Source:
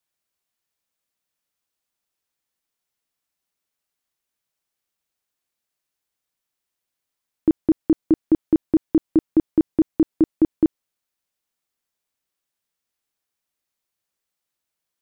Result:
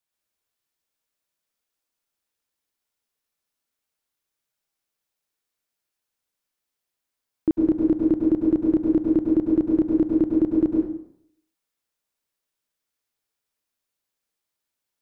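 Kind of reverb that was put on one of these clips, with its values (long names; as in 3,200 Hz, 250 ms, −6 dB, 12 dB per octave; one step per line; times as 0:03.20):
dense smooth reverb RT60 0.68 s, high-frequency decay 0.8×, pre-delay 90 ms, DRR −1 dB
level −4 dB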